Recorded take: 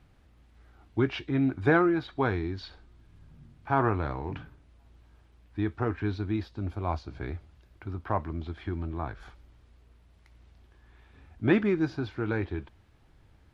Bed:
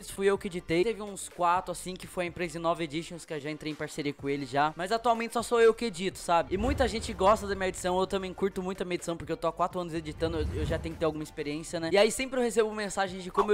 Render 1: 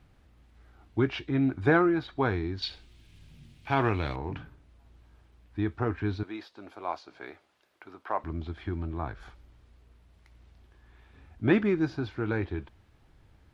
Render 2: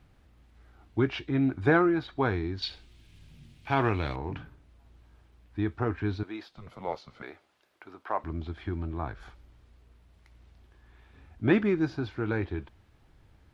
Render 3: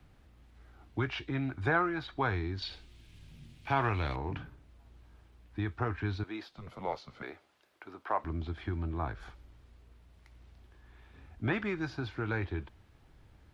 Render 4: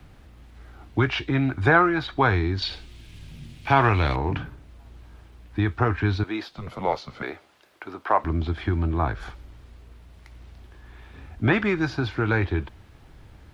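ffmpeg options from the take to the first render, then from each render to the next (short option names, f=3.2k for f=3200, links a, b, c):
-filter_complex "[0:a]asettb=1/sr,asplit=3[a][b][c];[a]atrim=end=2.624[d];[b]atrim=start=2.62:end=4.16,asetpts=PTS-STARTPTS,afade=t=in:d=0.004:c=qsin,afade=t=out:st=1.536:d=0.004:c=qsin,highshelf=f=1.9k:t=q:w=1.5:g=10[e];[c]atrim=start=4.156[f];[d][e]acrossfade=d=0.004:c1=hsin:c2=qsin[g];[g][f]acrossfade=d=0.004:c1=qsin:c2=hsin,asettb=1/sr,asplit=3[h][i][j];[h]atrim=end=6.234[k];[i]atrim=start=6.23:end=8.24,asetpts=PTS-STARTPTS,afade=t=in:d=0.004:c=qsin,afade=t=out:st=2.006:d=0.004:c=qsin,highpass=480[l];[j]atrim=start=8.236[m];[k][l]acrossfade=d=0.004:c1=hsin:c2=qsin[n];[n][m]acrossfade=d=0.004:c1=qsin:c2=hsin"
-filter_complex "[0:a]asettb=1/sr,asplit=3[a][b][c];[a]atrim=end=6.474[d];[b]atrim=start=6.47:end=7.23,asetpts=PTS-STARTPTS,afade=t=in:d=0.004:c=qsin,afade=t=out:st=0.756:d=0.004:c=qsin,afreqshift=-190[e];[c]atrim=start=7.226[f];[d][e]acrossfade=d=0.004:c1=hsin:c2=qsin[g];[g][f]acrossfade=d=0.004:c1=qsin:c2=hsin"
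-filter_complex "[0:a]acrossover=split=120|680|1500[a][b][c][d];[b]acompressor=threshold=-36dB:ratio=6[e];[d]alimiter=level_in=6dB:limit=-24dB:level=0:latency=1:release=59,volume=-6dB[f];[a][e][c][f]amix=inputs=4:normalize=0"
-af "volume=11dB"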